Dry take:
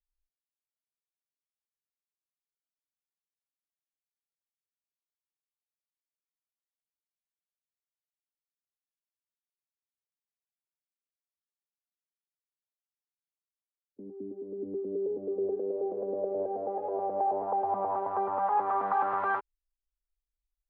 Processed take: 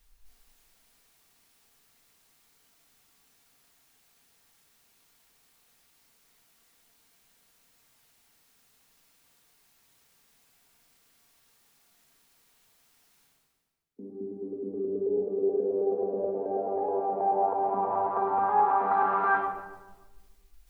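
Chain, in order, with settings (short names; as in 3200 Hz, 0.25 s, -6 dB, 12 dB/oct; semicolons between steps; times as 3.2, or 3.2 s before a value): notch 570 Hz, Q 12; reverse; upward compressor, threshold -44 dBFS; reverse; reverb RT60 1.3 s, pre-delay 4 ms, DRR -1 dB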